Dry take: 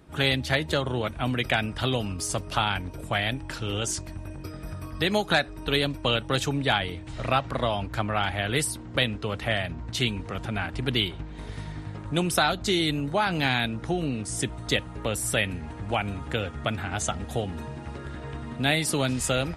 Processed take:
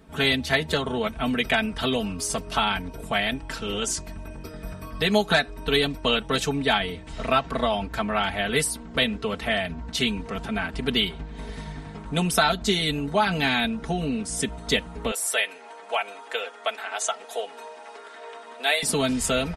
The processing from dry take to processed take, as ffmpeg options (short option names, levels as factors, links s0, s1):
-filter_complex "[0:a]asettb=1/sr,asplit=3[s0][s1][s2];[s0]atrim=end=15.114[s3];[s1]atrim=start=15.11:end=18.83,asetpts=PTS-STARTPTS,afade=t=in:d=0.004:c=qsin,afade=t=out:st=3.716:d=0.004:c=qsin,highpass=f=480:w=0.5412,highpass=f=480:w=1.3066[s4];[s2]atrim=start=18.826[s5];[s3][s4]acrossfade=d=0.004:c1=hsin:c2=qsin[s6];[s6][s5]acrossfade=d=0.004:c1=qsin:c2=hsin,aecho=1:1:4.5:0.83"